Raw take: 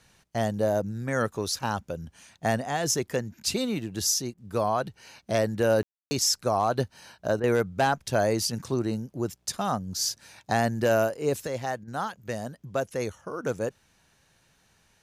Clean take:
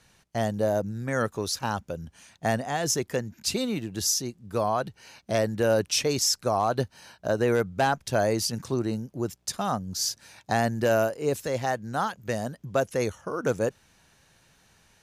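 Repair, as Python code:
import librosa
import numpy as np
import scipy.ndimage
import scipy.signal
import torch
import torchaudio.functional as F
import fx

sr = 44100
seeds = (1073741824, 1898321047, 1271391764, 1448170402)

y = fx.fix_ambience(x, sr, seeds[0], print_start_s=14.14, print_end_s=14.64, start_s=5.83, end_s=6.11)
y = fx.fix_interpolate(y, sr, at_s=(4.34, 7.4, 11.84), length_ms=35.0)
y = fx.gain(y, sr, db=fx.steps((0.0, 0.0), (11.47, 3.5)))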